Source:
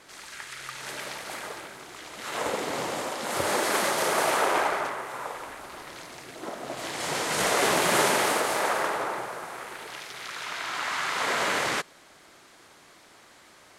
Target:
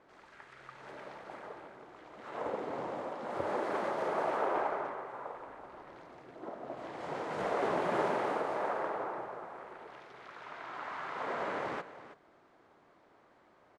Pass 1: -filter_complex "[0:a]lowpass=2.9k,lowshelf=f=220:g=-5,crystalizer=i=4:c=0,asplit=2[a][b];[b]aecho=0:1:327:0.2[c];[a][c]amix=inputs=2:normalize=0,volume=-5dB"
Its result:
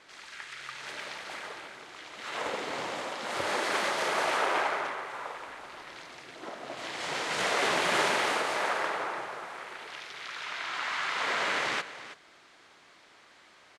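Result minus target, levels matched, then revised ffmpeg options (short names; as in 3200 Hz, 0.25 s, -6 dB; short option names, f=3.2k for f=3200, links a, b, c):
4000 Hz band +14.0 dB
-filter_complex "[0:a]lowpass=870,lowshelf=f=220:g=-5,crystalizer=i=4:c=0,asplit=2[a][b];[b]aecho=0:1:327:0.2[c];[a][c]amix=inputs=2:normalize=0,volume=-5dB"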